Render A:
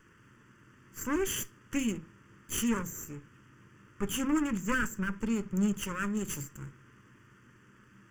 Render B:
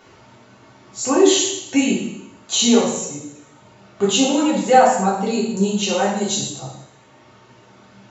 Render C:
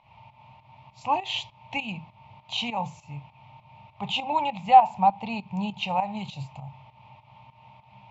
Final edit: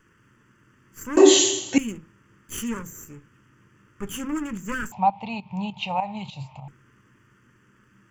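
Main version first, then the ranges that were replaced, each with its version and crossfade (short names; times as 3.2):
A
1.17–1.78 from B
4.92–6.68 from C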